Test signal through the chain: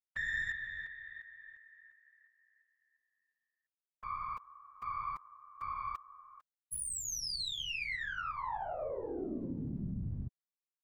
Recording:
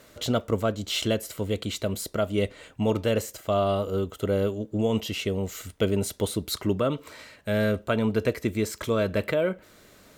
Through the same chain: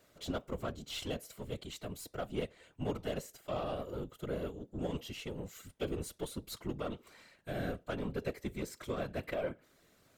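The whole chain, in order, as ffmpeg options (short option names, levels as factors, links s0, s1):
-af "aeval=exprs='0.282*(cos(1*acos(clip(val(0)/0.282,-1,1)))-cos(1*PI/2))+0.02*(cos(3*acos(clip(val(0)/0.282,-1,1)))-cos(3*PI/2))+0.01*(cos(8*acos(clip(val(0)/0.282,-1,1)))-cos(8*PI/2))':c=same,afftfilt=real='hypot(re,im)*cos(2*PI*random(0))':imag='hypot(re,im)*sin(2*PI*random(1))':win_size=512:overlap=0.75,volume=0.531"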